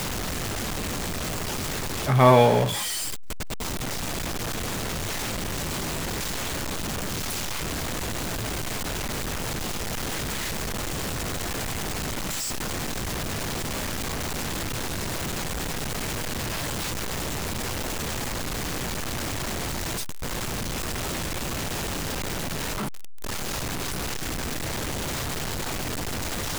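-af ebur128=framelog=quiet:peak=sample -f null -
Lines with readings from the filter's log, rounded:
Integrated loudness:
  I:         -28.1 LUFS
  Threshold: -38.1 LUFS
Loudness range:
  LRA:         6.9 LU
  Threshold: -48.2 LUFS
  LRA low:   -30.0 LUFS
  LRA high:  -23.2 LUFS
Sample peak:
  Peak:       -2.9 dBFS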